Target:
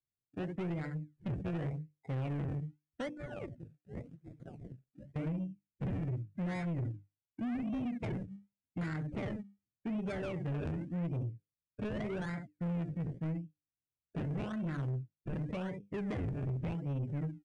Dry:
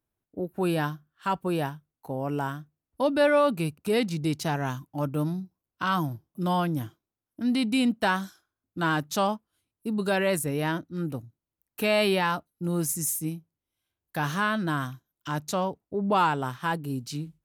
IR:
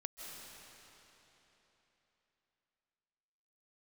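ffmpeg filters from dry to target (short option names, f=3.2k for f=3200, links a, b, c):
-filter_complex "[0:a]aecho=1:1:24|70:0.188|0.316,adynamicsmooth=sensitivity=3.5:basefreq=2k,asettb=1/sr,asplit=3[a][b][c];[a]atrim=end=3.094[d];[b]atrim=start=3.09:end=5.16,asetpts=PTS-STARTPTS,afade=t=in:d=0.004:c=qsin,afade=t=out:st=2.066:d=0.004:c=qsin,aderivative[e];[c]atrim=start=5.156[f];[d][e]acrossfade=d=0.004:c1=hsin:c2=qsin[g];[g][f]acrossfade=d=0.004:c1=qsin:c2=hsin,bandreject=f=50:t=h:w=6,bandreject=f=100:t=h:w=6,bandreject=f=150:t=h:w=6,bandreject=f=200:t=h:w=6,bandreject=f=250:t=h:w=6,bandreject=f=300:t=h:w=6,bandreject=f=350:t=h:w=6,bandreject=f=400:t=h:w=6,bandreject=f=450:t=h:w=6,bandreject=f=500:t=h:w=6,acrusher=samples=29:mix=1:aa=0.000001:lfo=1:lforange=29:lforate=0.87,acompressor=threshold=-31dB:ratio=16,equalizer=f=125:t=o:w=1:g=10,equalizer=f=1k:t=o:w=1:g=-11,equalizer=f=2k:t=o:w=1:g=3,equalizer=f=4k:t=o:w=1:g=-7,equalizer=f=8k:t=o:w=1:g=-5,afftdn=nr=18:nf=-45,asoftclip=type=tanh:threshold=-33dB,volume=1dB" -ar 22050 -c:a libmp3lame -b:a 64k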